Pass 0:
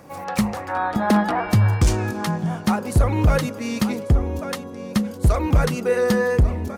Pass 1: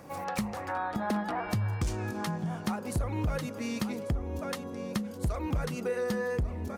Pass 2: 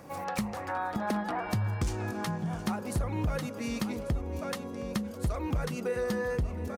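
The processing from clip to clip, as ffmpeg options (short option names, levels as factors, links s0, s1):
-af "acompressor=threshold=0.0355:ratio=2.5,volume=0.668"
-af "aecho=1:1:717:0.178"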